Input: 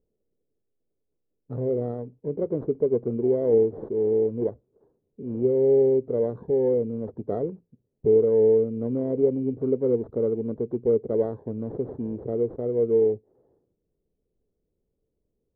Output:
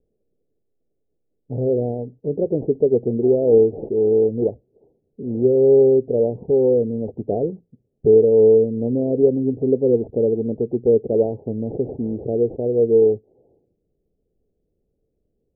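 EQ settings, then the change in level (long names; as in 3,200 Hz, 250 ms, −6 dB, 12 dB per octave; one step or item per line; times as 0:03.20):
Butterworth low-pass 830 Hz 72 dB per octave
+6.0 dB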